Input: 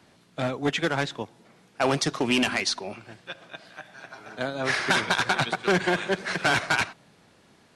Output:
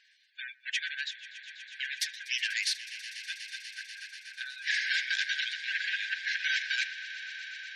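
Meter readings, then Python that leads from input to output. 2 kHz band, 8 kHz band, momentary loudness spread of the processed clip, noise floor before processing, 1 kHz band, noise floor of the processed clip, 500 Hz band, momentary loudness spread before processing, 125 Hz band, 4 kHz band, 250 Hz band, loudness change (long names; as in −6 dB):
−3.5 dB, −5.5 dB, 14 LU, −59 dBFS, below −40 dB, −64 dBFS, below −40 dB, 20 LU, below −40 dB, −3.0 dB, below −40 dB, −7.0 dB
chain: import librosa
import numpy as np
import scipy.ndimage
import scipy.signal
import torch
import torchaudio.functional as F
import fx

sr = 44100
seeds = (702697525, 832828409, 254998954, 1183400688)

y = np.minimum(x, 2.0 * 10.0 ** (-24.5 / 20.0) - x)
y = fx.high_shelf(y, sr, hz=8100.0, db=-6.0)
y = fx.spec_gate(y, sr, threshold_db=-25, keep='strong')
y = fx.brickwall_highpass(y, sr, low_hz=1500.0)
y = fx.echo_swell(y, sr, ms=122, loudest=5, wet_db=-17.5)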